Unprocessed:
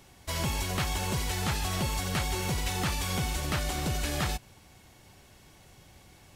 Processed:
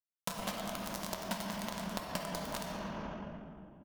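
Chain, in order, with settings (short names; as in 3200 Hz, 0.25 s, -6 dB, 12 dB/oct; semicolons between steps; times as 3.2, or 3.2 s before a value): tremolo saw down 6.5 Hz, depth 65%; bit-crush 4-bit; high shelf 6700 Hz -3 dB; shoebox room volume 200 m³, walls hard, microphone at 0.6 m; varispeed +18%; thirty-one-band EQ 100 Hz -11 dB, 200 Hz +11 dB, 400 Hz -5 dB, 630 Hz +11 dB, 1000 Hz +9 dB, 2500 Hz -4 dB; tempo 1.4×; compressor 6:1, threshold -48 dBFS, peak gain reduction 22 dB; gain +11.5 dB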